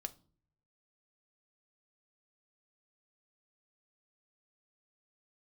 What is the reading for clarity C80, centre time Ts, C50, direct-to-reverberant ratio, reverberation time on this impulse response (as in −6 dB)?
26.0 dB, 3 ms, 20.5 dB, 9.0 dB, non-exponential decay